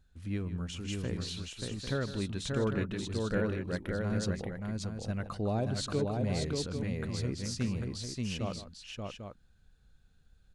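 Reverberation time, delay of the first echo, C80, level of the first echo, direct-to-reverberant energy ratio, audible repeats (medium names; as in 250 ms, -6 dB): no reverb, 154 ms, no reverb, -13.5 dB, no reverb, 3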